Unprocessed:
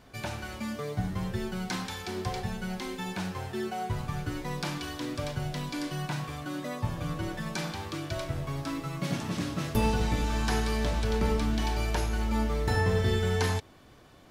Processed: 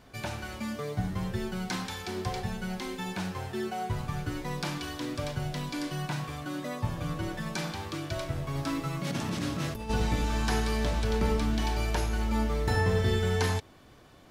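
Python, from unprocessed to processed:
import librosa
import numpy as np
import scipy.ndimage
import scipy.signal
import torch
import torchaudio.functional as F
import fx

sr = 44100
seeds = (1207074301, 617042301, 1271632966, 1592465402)

y = fx.over_compress(x, sr, threshold_db=-32.0, ratio=-1.0, at=(8.54, 9.89), fade=0.02)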